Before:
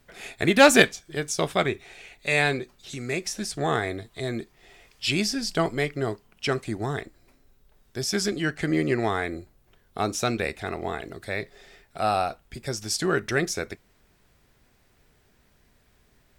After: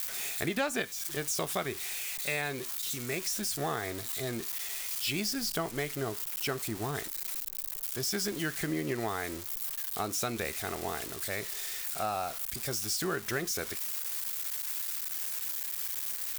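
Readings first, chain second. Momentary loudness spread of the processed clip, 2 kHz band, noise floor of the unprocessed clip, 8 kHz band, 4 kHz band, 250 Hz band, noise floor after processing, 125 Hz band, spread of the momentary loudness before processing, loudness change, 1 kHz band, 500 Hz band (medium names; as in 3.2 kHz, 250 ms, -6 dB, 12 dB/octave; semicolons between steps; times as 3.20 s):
4 LU, -9.5 dB, -63 dBFS, -0.5 dB, -6.0 dB, -9.5 dB, -41 dBFS, -8.5 dB, 13 LU, -7.0 dB, -9.0 dB, -10.5 dB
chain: zero-crossing glitches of -21.5 dBFS; peaking EQ 1.1 kHz +3.5 dB 1.1 oct; compression 6:1, threshold -23 dBFS, peak gain reduction 14.5 dB; trim -5.5 dB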